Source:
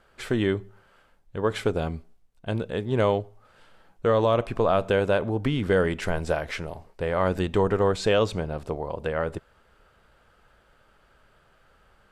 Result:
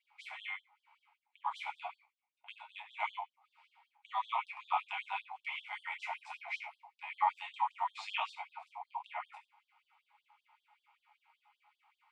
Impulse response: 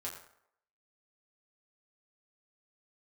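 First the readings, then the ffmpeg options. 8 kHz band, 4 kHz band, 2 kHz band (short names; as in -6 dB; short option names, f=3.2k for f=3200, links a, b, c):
under -20 dB, -10.5 dB, -8.5 dB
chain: -filter_complex "[0:a]asplit=3[a][b][c];[a]bandpass=f=300:t=q:w=8,volume=0dB[d];[b]bandpass=f=870:t=q:w=8,volume=-6dB[e];[c]bandpass=f=2.24k:t=q:w=8,volume=-9dB[f];[d][e][f]amix=inputs=3:normalize=0[g];[1:a]atrim=start_sample=2205,atrim=end_sample=6174,asetrate=52920,aresample=44100[h];[g][h]afir=irnorm=-1:irlink=0,afftfilt=real='re*gte(b*sr/1024,600*pow(3200/600,0.5+0.5*sin(2*PI*5.2*pts/sr)))':imag='im*gte(b*sr/1024,600*pow(3200/600,0.5+0.5*sin(2*PI*5.2*pts/sr)))':win_size=1024:overlap=0.75,volume=14.5dB"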